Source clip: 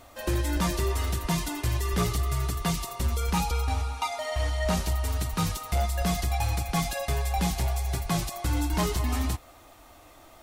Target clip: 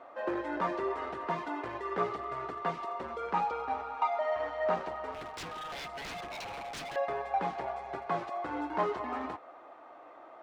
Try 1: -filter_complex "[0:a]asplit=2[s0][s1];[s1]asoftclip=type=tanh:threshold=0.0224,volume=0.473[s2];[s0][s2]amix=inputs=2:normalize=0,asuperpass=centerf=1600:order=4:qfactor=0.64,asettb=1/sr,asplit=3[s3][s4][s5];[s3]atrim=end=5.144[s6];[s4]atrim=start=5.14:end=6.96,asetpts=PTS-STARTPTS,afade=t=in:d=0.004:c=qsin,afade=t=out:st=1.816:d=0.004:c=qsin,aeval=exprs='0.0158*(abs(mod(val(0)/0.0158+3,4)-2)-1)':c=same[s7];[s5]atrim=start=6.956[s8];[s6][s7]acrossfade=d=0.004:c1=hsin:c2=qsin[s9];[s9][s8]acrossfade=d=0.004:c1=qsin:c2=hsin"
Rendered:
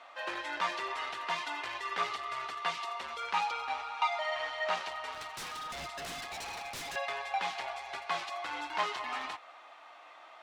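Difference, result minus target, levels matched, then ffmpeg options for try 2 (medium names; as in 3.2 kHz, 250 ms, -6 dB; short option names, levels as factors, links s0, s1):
2 kHz band +6.0 dB
-filter_complex "[0:a]asplit=2[s0][s1];[s1]asoftclip=type=tanh:threshold=0.0224,volume=0.473[s2];[s0][s2]amix=inputs=2:normalize=0,asuperpass=centerf=770:order=4:qfactor=0.64,asettb=1/sr,asplit=3[s3][s4][s5];[s3]atrim=end=5.144[s6];[s4]atrim=start=5.14:end=6.96,asetpts=PTS-STARTPTS,afade=t=in:d=0.004:c=qsin,afade=t=out:st=1.816:d=0.004:c=qsin,aeval=exprs='0.0158*(abs(mod(val(0)/0.0158+3,4)-2)-1)':c=same[s7];[s5]atrim=start=6.956[s8];[s6][s7]acrossfade=d=0.004:c1=hsin:c2=qsin[s9];[s9][s8]acrossfade=d=0.004:c1=qsin:c2=hsin"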